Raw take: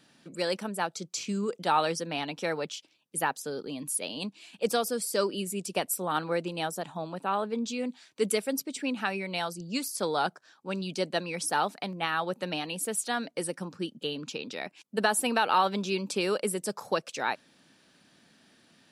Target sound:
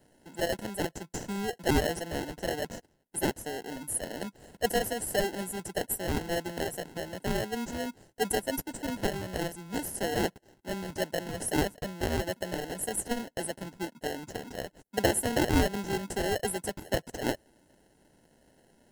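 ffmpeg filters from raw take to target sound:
-filter_complex "[0:a]lowshelf=f=250:g=-6,acrossover=split=110|6900[a][b][c];[b]acrusher=samples=37:mix=1:aa=0.000001[d];[a][d][c]amix=inputs=3:normalize=0"

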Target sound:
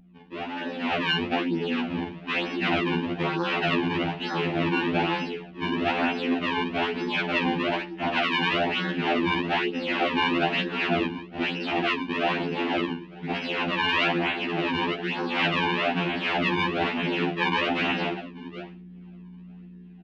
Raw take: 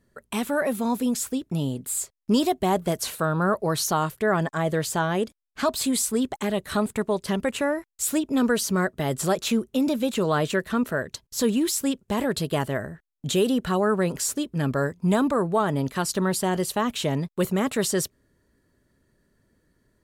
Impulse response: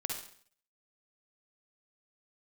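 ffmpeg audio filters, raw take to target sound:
-filter_complex "[0:a]alimiter=limit=-16.5dB:level=0:latency=1,asuperstop=centerf=650:order=4:qfactor=2.4,equalizer=f=370:t=o:w=1:g=13,aecho=1:1:602:0.075[a];[1:a]atrim=start_sample=2205,asetrate=70560,aresample=44100[b];[a][b]afir=irnorm=-1:irlink=0,acrusher=samples=38:mix=1:aa=0.000001:lfo=1:lforange=60.8:lforate=1.1,afftfilt=real='re*lt(hypot(re,im),0.398)':imag='im*lt(hypot(re,im),0.398)':win_size=1024:overlap=0.75,highpass=150,equalizer=f=230:t=q:w=4:g=6,equalizer=f=340:t=q:w=4:g=5,equalizer=f=490:t=q:w=4:g=-9,equalizer=f=730:t=q:w=4:g=8,equalizer=f=1.2k:t=q:w=4:g=-5,equalizer=f=2.7k:t=q:w=4:g=8,lowpass=f=3.3k:w=0.5412,lowpass=f=3.3k:w=1.3066,aeval=exprs='val(0)+0.01*(sin(2*PI*60*n/s)+sin(2*PI*2*60*n/s)/2+sin(2*PI*3*60*n/s)/3+sin(2*PI*4*60*n/s)/4+sin(2*PI*5*60*n/s)/5)':c=same,dynaudnorm=f=150:g=11:m=11dB,afftfilt=real='re*2*eq(mod(b,4),0)':imag='im*2*eq(mod(b,4),0)':win_size=2048:overlap=0.75,volume=-4.5dB"

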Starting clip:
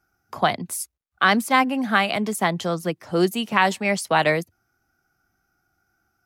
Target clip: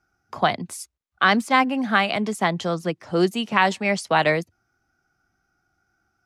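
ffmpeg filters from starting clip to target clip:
-af "lowpass=7.5k"

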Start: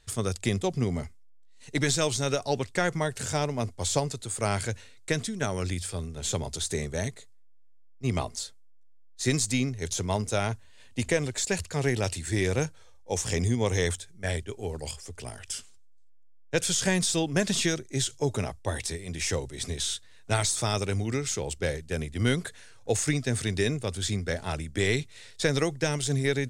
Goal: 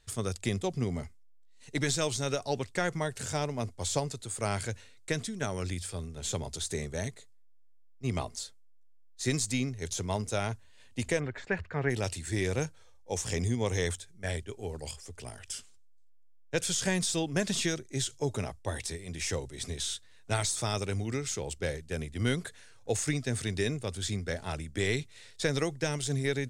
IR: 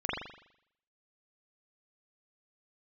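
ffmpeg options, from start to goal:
-filter_complex "[0:a]asplit=3[a][b][c];[a]afade=t=out:st=11.19:d=0.02[d];[b]lowpass=f=1.7k:t=q:w=1.9,afade=t=in:st=11.19:d=0.02,afade=t=out:st=11.89:d=0.02[e];[c]afade=t=in:st=11.89:d=0.02[f];[d][e][f]amix=inputs=3:normalize=0,volume=-4dB"

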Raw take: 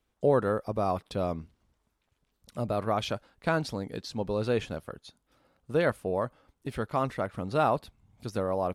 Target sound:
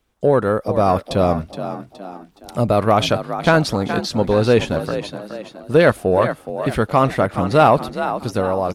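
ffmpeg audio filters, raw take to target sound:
-filter_complex "[0:a]dynaudnorm=f=210:g=7:m=5.5dB,asplit=2[a][b];[b]asplit=4[c][d][e][f];[c]adelay=419,afreqshift=46,volume=-11dB[g];[d]adelay=838,afreqshift=92,volume=-18.3dB[h];[e]adelay=1257,afreqshift=138,volume=-25.7dB[i];[f]adelay=1676,afreqshift=184,volume=-33dB[j];[g][h][i][j]amix=inputs=4:normalize=0[k];[a][k]amix=inputs=2:normalize=0,asoftclip=type=tanh:threshold=-9.5dB,volume=8.5dB"

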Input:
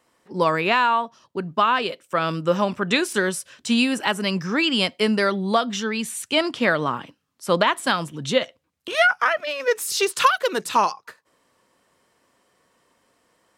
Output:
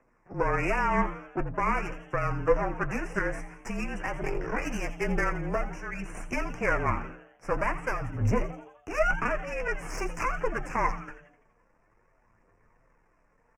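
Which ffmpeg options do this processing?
-filter_complex "[0:a]asubboost=boost=7:cutoff=96,asettb=1/sr,asplit=3[a][b][c];[a]atrim=end=5.714[d];[b]atrim=start=5.71:end=6.15,asetpts=PTS-STARTPTS,afade=t=in:d=0.004:c=qsin,afade=t=out:st=0.436:d=0.004:c=qsin,acompressor=threshold=-30dB:ratio=3[e];[c]atrim=start=6.146[f];[d][e]acrossfade=d=0.004:c1=hsin:c2=qsin[g];[g][f]acrossfade=d=0.004:c1=qsin:c2=hsin,alimiter=limit=-15.5dB:level=0:latency=1:release=361,aphaser=in_gain=1:out_gain=1:delay=4.5:decay=0.42:speed=0.48:type=triangular,asettb=1/sr,asplit=3[h][i][j];[h]atrim=end=4.234[k];[i]atrim=start=4.23:end=4.65,asetpts=PTS-STARTPTS,afade=t=in:d=0.004:c=qsin,afade=t=out:st=0.416:d=0.004:c=qsin,aeval=exprs='val(0)*sin(2*PI*240*n/s)':c=same[l];[j]atrim=start=4.646[m];[k][l]acrossfade=d=0.004:c1=hsin:c2=qsin[n];[n][m]acrossfade=d=0.004:c1=qsin:c2=hsin,aeval=exprs='max(val(0),0)':c=same,afreqshift=-31,flanger=delay=7.5:depth=2.7:regen=43:speed=1.4:shape=triangular,adynamicsmooth=sensitivity=3:basefreq=3.1k,asuperstop=centerf=3700:order=8:qfactor=1.3,asplit=6[o][p][q][r][s][t];[p]adelay=84,afreqshift=140,volume=-14dB[u];[q]adelay=168,afreqshift=280,volume=-20dB[v];[r]adelay=252,afreqshift=420,volume=-26dB[w];[s]adelay=336,afreqshift=560,volume=-32.1dB[x];[t]adelay=420,afreqshift=700,volume=-38.1dB[y];[o][u][v][w][x][y]amix=inputs=6:normalize=0,volume=6.5dB"

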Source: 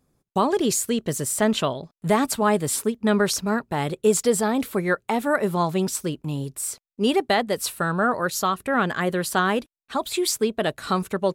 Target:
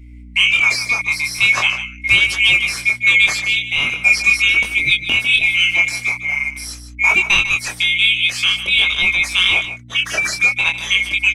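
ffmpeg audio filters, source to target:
-filter_complex "[0:a]afftfilt=real='real(if(lt(b,920),b+92*(1-2*mod(floor(b/92),2)),b),0)':imag='imag(if(lt(b,920),b+92*(1-2*mod(floor(b/92),2)),b),0)':win_size=2048:overlap=0.75,acrossover=split=5000[a][b];[b]acompressor=threshold=-32dB:ratio=4:attack=1:release=60[c];[a][c]amix=inputs=2:normalize=0,lowpass=8.9k,acontrast=77,aeval=exprs='val(0)+0.0126*(sin(2*PI*60*n/s)+sin(2*PI*2*60*n/s)/2+sin(2*PI*3*60*n/s)/3+sin(2*PI*4*60*n/s)/4+sin(2*PI*5*60*n/s)/5)':c=same,flanger=delay=19.5:depth=7.6:speed=0.44,aecho=1:1:150:0.251,volume=3.5dB"

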